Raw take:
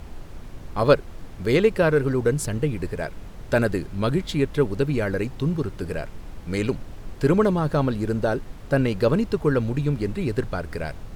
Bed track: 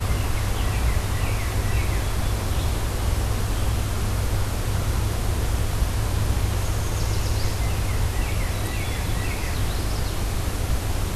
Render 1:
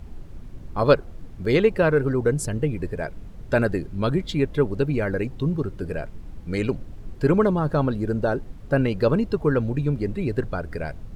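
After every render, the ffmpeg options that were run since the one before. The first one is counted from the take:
-af "afftdn=nr=9:nf=-39"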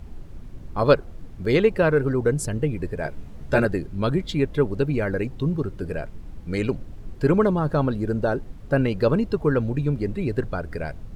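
-filter_complex "[0:a]asettb=1/sr,asplit=3[s0][s1][s2];[s0]atrim=end=3.034[s3];[s1]atrim=start=3.03:end=3.65,asetpts=PTS-STARTPTS,afade=t=in:d=0.004:c=qsin,afade=t=out:st=0.616:d=0.004:c=qsin,asplit=2[s4][s5];[s5]adelay=14,volume=0.794[s6];[s4][s6]amix=inputs=2:normalize=0,atrim=end_sample=27342[s7];[s2]atrim=start=3.646[s8];[s3][s7]acrossfade=d=0.004:c1=hsin:c2=qsin[s9];[s9][s8]acrossfade=d=0.004:c1=qsin:c2=hsin"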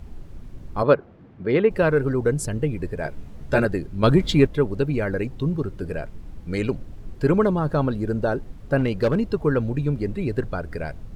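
-filter_complex "[0:a]asplit=3[s0][s1][s2];[s0]afade=t=out:st=0.82:d=0.02[s3];[s1]highpass=130,lowpass=2300,afade=t=in:st=0.82:d=0.02,afade=t=out:st=1.69:d=0.02[s4];[s2]afade=t=in:st=1.69:d=0.02[s5];[s3][s4][s5]amix=inputs=3:normalize=0,asettb=1/sr,asplit=3[s6][s7][s8];[s6]atrim=end=4.034[s9];[s7]atrim=start=4.03:end=4.47,asetpts=PTS-STARTPTS,afade=t=in:d=0.004:c=qsin,afade=t=out:st=0.436:d=0.004:c=qsin,acontrast=70[s10];[s8]atrim=start=4.466[s11];[s9][s10]acrossfade=d=0.004:c1=hsin:c2=qsin[s12];[s12][s11]acrossfade=d=0.004:c1=qsin:c2=hsin,asettb=1/sr,asplit=3[s13][s14][s15];[s13]atrim=end=8.784[s16];[s14]atrim=start=8.78:end=9.3,asetpts=PTS-STARTPTS,afade=t=in:d=0.004:c=qsin,afade=t=out:st=0.516:d=0.004:c=qsin,asoftclip=type=hard:threshold=0.2[s17];[s15]atrim=start=9.296[s18];[s16][s17]acrossfade=d=0.004:c1=hsin:c2=qsin[s19];[s19][s18]acrossfade=d=0.004:c1=qsin:c2=hsin"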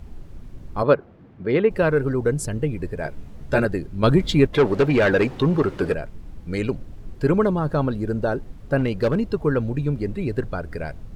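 -filter_complex "[0:a]asettb=1/sr,asplit=3[s0][s1][s2];[s0]atrim=end=4.534[s3];[s1]atrim=start=4.53:end=5.94,asetpts=PTS-STARTPTS,afade=t=in:d=0.004:c=qsin,afade=t=out:st=1.406:d=0.004:c=qsin,asplit=2[s4][s5];[s5]highpass=f=720:p=1,volume=14.1,asoftclip=type=tanh:threshold=0.422[s6];[s4][s6]amix=inputs=2:normalize=0,lowpass=f=2700:p=1,volume=0.501[s7];[s2]atrim=start=5.936[s8];[s3][s7]acrossfade=d=0.004:c1=hsin:c2=qsin[s9];[s9][s8]acrossfade=d=0.004:c1=qsin:c2=hsin"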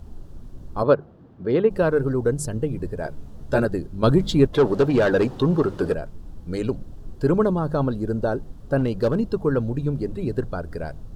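-af "equalizer=f=2200:t=o:w=0.69:g=-11.5,bandreject=f=50:t=h:w=6,bandreject=f=100:t=h:w=6,bandreject=f=150:t=h:w=6,bandreject=f=200:t=h:w=6"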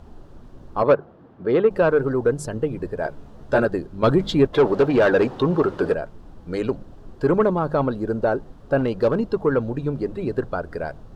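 -filter_complex "[0:a]asplit=2[s0][s1];[s1]highpass=f=720:p=1,volume=4.47,asoftclip=type=tanh:threshold=0.562[s2];[s0][s2]amix=inputs=2:normalize=0,lowpass=f=1700:p=1,volume=0.501"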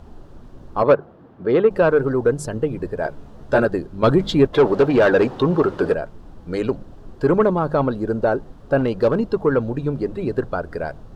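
-af "volume=1.26"

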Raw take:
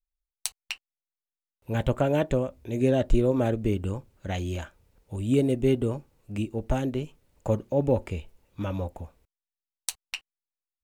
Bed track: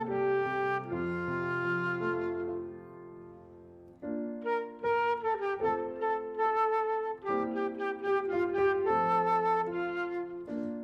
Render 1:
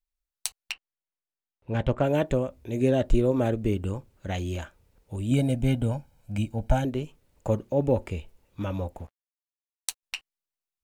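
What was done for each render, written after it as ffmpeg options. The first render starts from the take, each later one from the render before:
-filter_complex "[0:a]asettb=1/sr,asplit=3[s0][s1][s2];[s0]atrim=end=0.724[s3];[s1]atrim=start=0.72:end=2.03,asetpts=PTS-STARTPTS,afade=t=in:d=0.004:c=qsin,afade=t=out:st=1.306:d=0.004:c=qsin,adynamicsmooth=sensitivity=4:basefreq=3500[s4];[s2]atrim=start=2.026[s5];[s3][s4]acrossfade=d=0.004:c1=hsin:c2=qsin[s6];[s6][s5]acrossfade=d=0.004:c1=qsin:c2=hsin,asettb=1/sr,asplit=3[s7][s8][s9];[s7]atrim=end=5.314[s10];[s8]atrim=start=5.31:end=6.85,asetpts=PTS-STARTPTS,afade=t=in:d=0.004:c=qsin,afade=t=out:st=1.536:d=0.004:c=qsin,aecho=1:1:1.3:0.79,atrim=end_sample=67914[s11];[s9]atrim=start=6.846[s12];[s10][s11]acrossfade=d=0.004:c1=hsin:c2=qsin[s13];[s13][s12]acrossfade=d=0.004:c1=qsin:c2=hsin,asettb=1/sr,asplit=3[s14][s15][s16];[s14]atrim=end=8.994[s17];[s15]atrim=start=8.99:end=10.03,asetpts=PTS-STARTPTS,afade=t=in:d=0.004:c=qsin,afade=t=out:st=1.036:d=0.004:c=qsin,aeval=exprs='sgn(val(0))*max(abs(val(0))-0.00266,0)':c=same[s18];[s16]atrim=start=10.026[s19];[s17][s18]acrossfade=d=0.004:c1=hsin:c2=qsin[s20];[s20][s19]acrossfade=d=0.004:c1=qsin:c2=hsin"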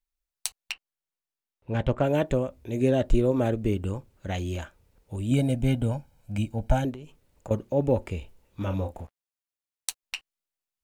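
-filter_complex "[0:a]asettb=1/sr,asplit=3[s0][s1][s2];[s0]atrim=end=6.914[s3];[s1]atrim=start=6.91:end=7.51,asetpts=PTS-STARTPTS,afade=t=in:d=0.004:c=qsin,afade=t=out:st=0.596:d=0.004:c=qsin,acompressor=threshold=0.0141:ratio=6:attack=3.2:release=140:knee=1:detection=peak[s4];[s2]atrim=start=7.506[s5];[s3][s4]acrossfade=d=0.004:c1=hsin:c2=qsin[s6];[s6][s5]acrossfade=d=0.004:c1=qsin:c2=hsin,asettb=1/sr,asplit=3[s7][s8][s9];[s7]atrim=end=8.184[s10];[s8]atrim=start=8.18:end=9.01,asetpts=PTS-STARTPTS,afade=t=in:d=0.004:c=qsin,afade=t=out:st=0.826:d=0.004:c=qsin,asplit=2[s11][s12];[s12]adelay=31,volume=0.447[s13];[s11][s13]amix=inputs=2:normalize=0,atrim=end_sample=36603[s14];[s9]atrim=start=9.006[s15];[s10][s14]acrossfade=d=0.004:c1=hsin:c2=qsin[s16];[s16][s15]acrossfade=d=0.004:c1=qsin:c2=hsin"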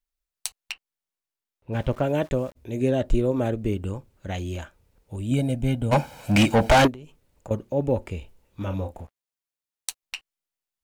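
-filter_complex "[0:a]asplit=3[s0][s1][s2];[s0]afade=t=out:st=1.72:d=0.02[s3];[s1]aeval=exprs='val(0)*gte(abs(val(0)),0.00531)':c=same,afade=t=in:st=1.72:d=0.02,afade=t=out:st=2.55:d=0.02[s4];[s2]afade=t=in:st=2.55:d=0.02[s5];[s3][s4][s5]amix=inputs=3:normalize=0,asplit=3[s6][s7][s8];[s6]afade=t=out:st=5.91:d=0.02[s9];[s7]asplit=2[s10][s11];[s11]highpass=f=720:p=1,volume=56.2,asoftclip=type=tanh:threshold=0.398[s12];[s10][s12]amix=inputs=2:normalize=0,lowpass=f=4600:p=1,volume=0.501,afade=t=in:st=5.91:d=0.02,afade=t=out:st=6.86:d=0.02[s13];[s8]afade=t=in:st=6.86:d=0.02[s14];[s9][s13][s14]amix=inputs=3:normalize=0"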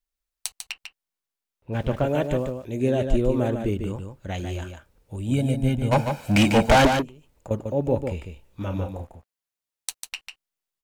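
-af "aecho=1:1:147:0.473"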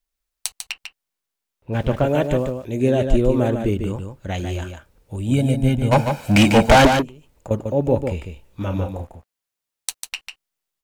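-af "volume=1.68"

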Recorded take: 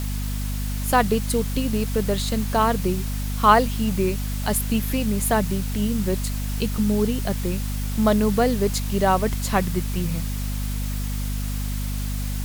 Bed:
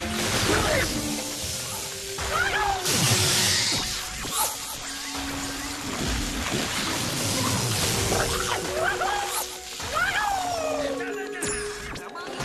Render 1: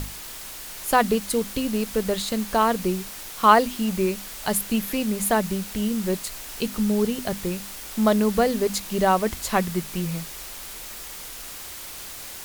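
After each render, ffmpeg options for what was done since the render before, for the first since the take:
-af "bandreject=f=50:t=h:w=6,bandreject=f=100:t=h:w=6,bandreject=f=150:t=h:w=6,bandreject=f=200:t=h:w=6,bandreject=f=250:t=h:w=6"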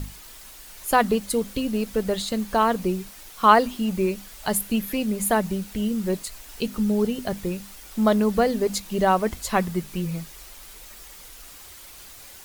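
-af "afftdn=nr=8:nf=-38"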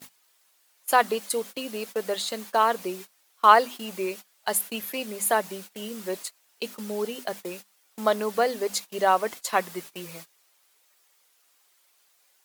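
-af "agate=range=0.1:threshold=0.0251:ratio=16:detection=peak,highpass=480"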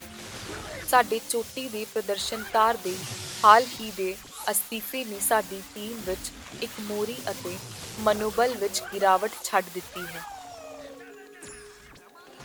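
-filter_complex "[1:a]volume=0.178[s0];[0:a][s0]amix=inputs=2:normalize=0"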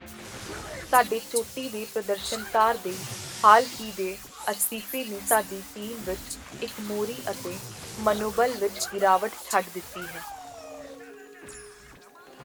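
-filter_complex "[0:a]asplit=2[s0][s1];[s1]adelay=15,volume=0.251[s2];[s0][s2]amix=inputs=2:normalize=0,acrossover=split=3400[s3][s4];[s4]adelay=60[s5];[s3][s5]amix=inputs=2:normalize=0"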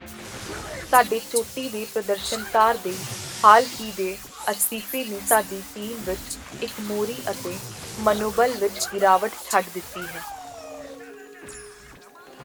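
-af "volume=1.5,alimiter=limit=0.891:level=0:latency=1"

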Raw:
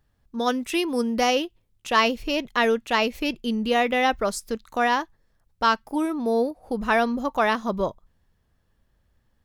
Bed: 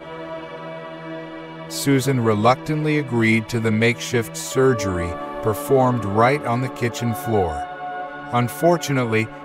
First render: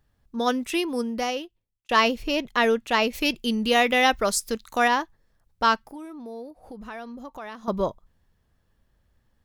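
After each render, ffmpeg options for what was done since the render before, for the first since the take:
-filter_complex "[0:a]asettb=1/sr,asplit=3[s0][s1][s2];[s0]atrim=end=3.134[s3];[s1]atrim=start=3.13:end=4.88,asetpts=PTS-STARTPTS,afade=t=in:d=0.004:c=qsin,afade=t=out:st=1.746:d=0.004:c=qsin,highshelf=f=2300:g=8[s4];[s2]atrim=start=4.876[s5];[s3][s4]acrossfade=d=0.004:c1=hsin:c2=qsin[s6];[s6][s5]acrossfade=d=0.004:c1=qsin:c2=hsin,asettb=1/sr,asplit=3[s7][s8][s9];[s7]atrim=end=5.854[s10];[s8]atrim=start=5.85:end=7.68,asetpts=PTS-STARTPTS,afade=t=in:d=0.004:c=qsin,afade=t=out:st=1.826:d=0.004:c=qsin,acompressor=threshold=0.00708:ratio=2.5:attack=3.2:release=140:knee=1:detection=peak[s11];[s9]atrim=start=7.676[s12];[s10][s11]acrossfade=d=0.004:c1=hsin:c2=qsin[s13];[s13][s12]acrossfade=d=0.004:c1=qsin:c2=hsin,asplit=2[s14][s15];[s14]atrim=end=1.89,asetpts=PTS-STARTPTS,afade=t=out:st=0.63:d=1.26[s16];[s15]atrim=start=1.89,asetpts=PTS-STARTPTS,afade=t=in:d=0.004:c=hsin[s17];[s16][s17]concat=n=2:v=0:a=1"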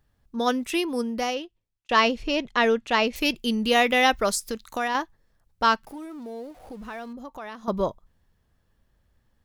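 -filter_complex "[0:a]asettb=1/sr,asplit=3[s0][s1][s2];[s0]atrim=end=1.344[s3];[s1]atrim=start=1.34:end=3.16,asetpts=PTS-STARTPTS,afade=t=in:d=0.004:c=qsin,afade=t=out:st=1.816:d=0.004:c=qsin,lowpass=7200[s4];[s2]atrim=start=3.156[s5];[s3][s4]acrossfade=d=0.004:c1=hsin:c2=qsin[s6];[s6][s5]acrossfade=d=0.004:c1=qsin:c2=hsin,asettb=1/sr,asplit=3[s7][s8][s9];[s7]atrim=end=4.354[s10];[s8]atrim=start=4.35:end=4.95,asetpts=PTS-STARTPTS,afade=t=in:d=0.004:c=qsin,afade=t=out:st=0.596:d=0.004:c=qsin,acompressor=threshold=0.0562:ratio=2.5:attack=3.2:release=140:knee=1:detection=peak[s11];[s9]atrim=start=4.946[s12];[s10][s11]acrossfade=d=0.004:c1=hsin:c2=qsin[s13];[s13][s12]acrossfade=d=0.004:c1=qsin:c2=hsin,asettb=1/sr,asplit=3[s14][s15][s16];[s14]atrim=end=5.834[s17];[s15]atrim=start=5.83:end=7.13,asetpts=PTS-STARTPTS,afade=t=in:d=0.004:c=qsin,afade=t=out:st=1.296:d=0.004:c=qsin,aeval=exprs='val(0)+0.5*0.00355*sgn(val(0))':c=same[s18];[s16]atrim=start=7.126[s19];[s17][s18]acrossfade=d=0.004:c1=hsin:c2=qsin[s20];[s20][s19]acrossfade=d=0.004:c1=qsin:c2=hsin"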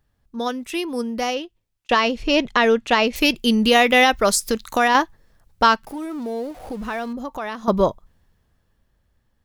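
-af "alimiter=limit=0.2:level=0:latency=1:release=475,dynaudnorm=f=250:g=13:m=3.16"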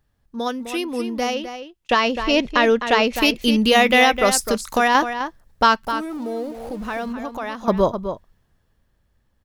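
-filter_complex "[0:a]asplit=2[s0][s1];[s1]adelay=256.6,volume=0.355,highshelf=f=4000:g=-5.77[s2];[s0][s2]amix=inputs=2:normalize=0"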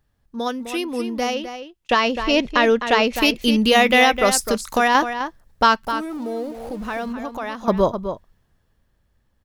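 -af anull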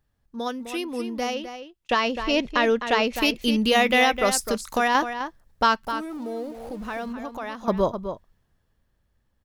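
-af "volume=0.596"

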